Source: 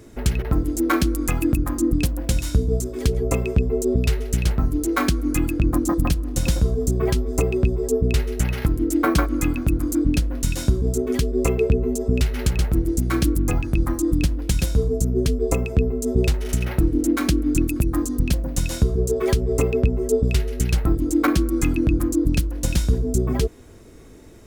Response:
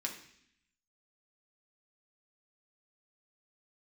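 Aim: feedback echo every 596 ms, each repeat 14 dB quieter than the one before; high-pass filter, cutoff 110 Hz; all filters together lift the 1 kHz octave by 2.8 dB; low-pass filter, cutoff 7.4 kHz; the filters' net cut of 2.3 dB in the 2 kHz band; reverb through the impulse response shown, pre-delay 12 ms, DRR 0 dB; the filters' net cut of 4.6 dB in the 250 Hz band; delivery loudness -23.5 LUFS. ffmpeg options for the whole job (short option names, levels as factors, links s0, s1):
-filter_complex "[0:a]highpass=110,lowpass=7400,equalizer=f=250:t=o:g=-6.5,equalizer=f=1000:t=o:g=5.5,equalizer=f=2000:t=o:g=-5,aecho=1:1:596|1192:0.2|0.0399,asplit=2[s0][s1];[1:a]atrim=start_sample=2205,adelay=12[s2];[s1][s2]afir=irnorm=-1:irlink=0,volume=0.891[s3];[s0][s3]amix=inputs=2:normalize=0,volume=0.944"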